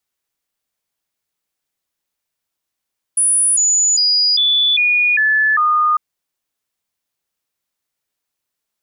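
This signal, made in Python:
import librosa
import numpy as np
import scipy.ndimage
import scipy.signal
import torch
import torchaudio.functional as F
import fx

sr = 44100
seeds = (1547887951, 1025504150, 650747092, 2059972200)

y = fx.stepped_sweep(sr, from_hz=9800.0, direction='down', per_octave=2, tones=7, dwell_s=0.4, gap_s=0.0, level_db=-11.0)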